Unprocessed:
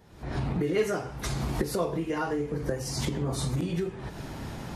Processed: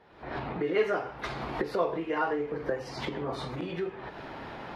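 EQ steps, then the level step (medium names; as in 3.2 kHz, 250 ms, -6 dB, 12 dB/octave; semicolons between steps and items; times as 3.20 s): distance through air 370 m; tone controls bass -8 dB, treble +2 dB; bass shelf 320 Hz -11.5 dB; +6.0 dB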